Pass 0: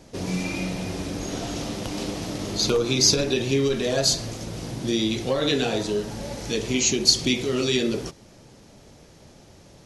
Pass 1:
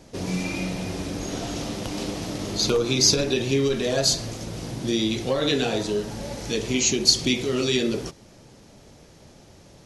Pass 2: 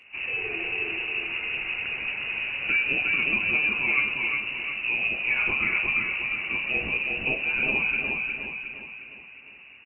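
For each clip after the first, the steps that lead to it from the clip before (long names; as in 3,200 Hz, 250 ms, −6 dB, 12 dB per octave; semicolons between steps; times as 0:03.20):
no processing that can be heard
on a send: repeating echo 358 ms, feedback 49%, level −3 dB; on the sum: voice inversion scrambler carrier 2,800 Hz; level −2.5 dB; Ogg Vorbis 32 kbit/s 48,000 Hz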